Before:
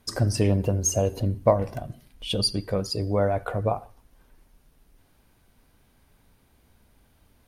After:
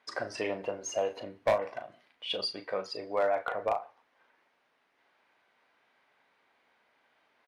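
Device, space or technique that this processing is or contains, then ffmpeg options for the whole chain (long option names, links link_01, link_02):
megaphone: -filter_complex "[0:a]highpass=660,lowpass=2900,equalizer=frequency=2000:width_type=o:width=0.42:gain=4,asoftclip=type=hard:threshold=-20.5dB,asplit=2[link_01][link_02];[link_02]adelay=37,volume=-9dB[link_03];[link_01][link_03]amix=inputs=2:normalize=0"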